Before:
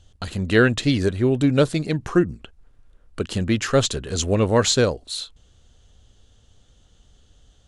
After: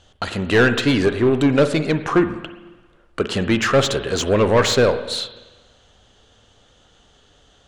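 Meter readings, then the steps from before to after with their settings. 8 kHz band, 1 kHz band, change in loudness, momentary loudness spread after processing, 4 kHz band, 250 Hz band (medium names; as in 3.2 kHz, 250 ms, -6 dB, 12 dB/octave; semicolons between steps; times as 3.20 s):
-2.0 dB, +5.5 dB, +2.5 dB, 12 LU, +2.5 dB, +2.0 dB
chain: overdrive pedal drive 21 dB, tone 1.9 kHz, clips at -3 dBFS; spring tank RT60 1.2 s, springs 44/49/58 ms, chirp 70 ms, DRR 10 dB; trim -2 dB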